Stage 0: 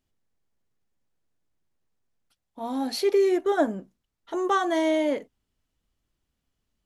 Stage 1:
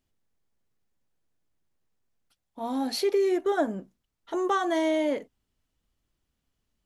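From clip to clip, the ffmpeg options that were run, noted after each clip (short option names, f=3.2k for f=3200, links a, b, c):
-af "acompressor=threshold=-23dB:ratio=2"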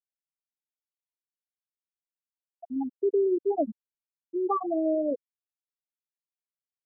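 -af "afftfilt=real='re*gte(hypot(re,im),0.316)':imag='im*gte(hypot(re,im),0.316)':win_size=1024:overlap=0.75"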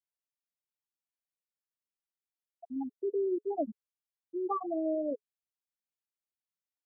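-af "bandreject=f=420:w=13,volume=-5.5dB"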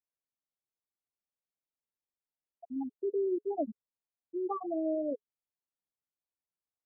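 -af "lowpass=1k"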